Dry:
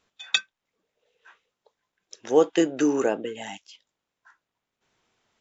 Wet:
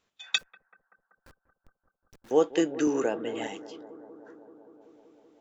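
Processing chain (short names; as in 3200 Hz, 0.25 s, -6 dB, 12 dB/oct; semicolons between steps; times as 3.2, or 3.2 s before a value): 0.38–2.31 Schmitt trigger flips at -47 dBFS; analogue delay 0.191 s, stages 2048, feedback 81%, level -17 dB; 2.87–3.47 three-band squash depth 70%; gain -4 dB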